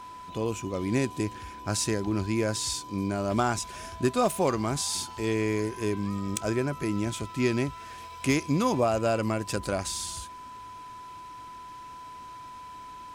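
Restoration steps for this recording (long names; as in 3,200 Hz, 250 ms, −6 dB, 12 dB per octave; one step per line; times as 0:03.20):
clipped peaks rebuilt −14.5 dBFS
notch filter 1,000 Hz, Q 30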